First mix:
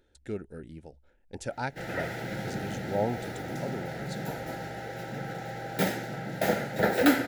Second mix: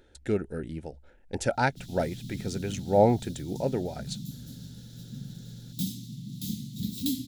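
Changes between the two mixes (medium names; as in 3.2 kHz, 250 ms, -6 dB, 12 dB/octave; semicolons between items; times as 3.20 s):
speech +8.0 dB; background: add Chebyshev band-stop 250–3500 Hz, order 4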